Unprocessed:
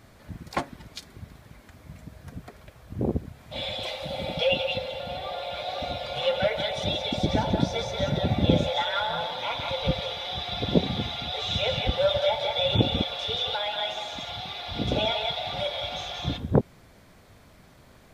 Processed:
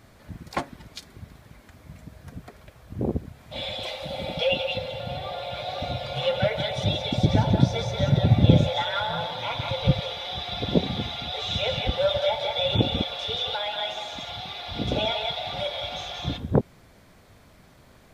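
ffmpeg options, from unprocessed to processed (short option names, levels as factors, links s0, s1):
-filter_complex "[0:a]asettb=1/sr,asplit=3[s0][s1][s2];[s0]atrim=end=4.784[s3];[s1]atrim=start=4.78:end=10,asetpts=PTS-STARTPTS,afade=t=in:d=0.004:c=qsin,afade=t=out:st=5.216:d=0.004:c=qsin,equalizer=f=120:w=1.5:g=11[s4];[s2]atrim=start=9.996[s5];[s3][s4]acrossfade=d=0.004:c1=hsin:c2=qsin[s6];[s6][s5]acrossfade=d=0.004:c1=qsin:c2=hsin"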